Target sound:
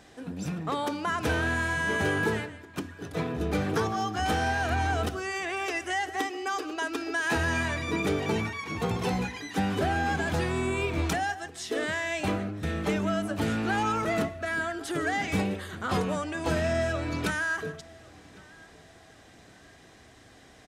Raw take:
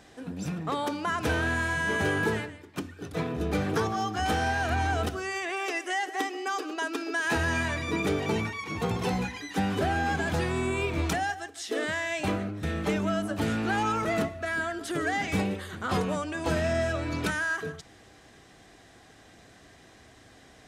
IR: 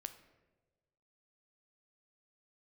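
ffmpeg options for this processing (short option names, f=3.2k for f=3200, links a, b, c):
-filter_complex "[0:a]asplit=2[a][b];[b]adelay=1108,lowpass=f=3.7k:p=1,volume=-24dB,asplit=2[c][d];[d]adelay=1108,lowpass=f=3.7k:p=1,volume=0.36[e];[a][c][e]amix=inputs=3:normalize=0"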